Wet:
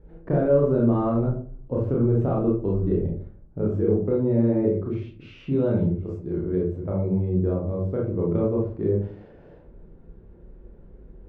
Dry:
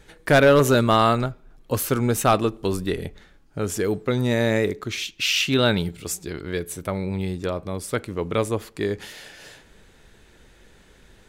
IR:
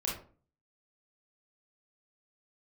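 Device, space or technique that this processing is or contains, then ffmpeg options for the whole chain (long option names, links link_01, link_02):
television next door: -filter_complex "[0:a]acompressor=threshold=-20dB:ratio=4,lowpass=510[link_01];[1:a]atrim=start_sample=2205[link_02];[link_01][link_02]afir=irnorm=-1:irlink=0"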